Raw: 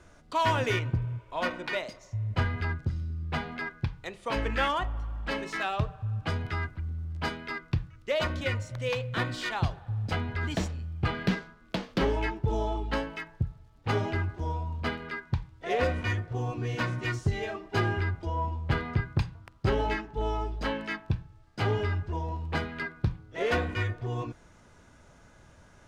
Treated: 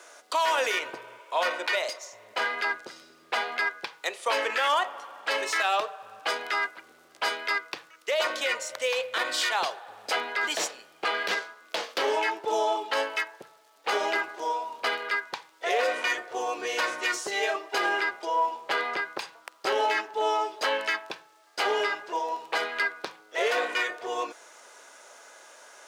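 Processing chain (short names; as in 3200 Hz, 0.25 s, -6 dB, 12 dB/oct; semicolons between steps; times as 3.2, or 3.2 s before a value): HPF 460 Hz 24 dB/oct; high shelf 5100 Hz +9.5 dB; limiter -25 dBFS, peak gain reduction 10.5 dB; gain +8.5 dB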